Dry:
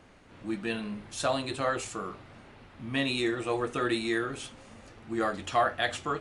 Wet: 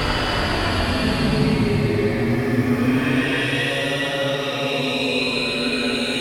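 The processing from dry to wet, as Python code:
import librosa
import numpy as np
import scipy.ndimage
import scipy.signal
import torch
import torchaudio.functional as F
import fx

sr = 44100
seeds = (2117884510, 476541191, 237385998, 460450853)

y = fx.recorder_agc(x, sr, target_db=-17.5, rise_db_per_s=31.0, max_gain_db=30)
y = fx.doubler(y, sr, ms=20.0, db=-4.5)
y = fx.echo_pitch(y, sr, ms=93, semitones=3, count=3, db_per_echo=-6.0)
y = fx.paulstretch(y, sr, seeds[0], factor=13.0, window_s=0.1, from_s=2.7)
y = y * 10.0 ** (3.5 / 20.0)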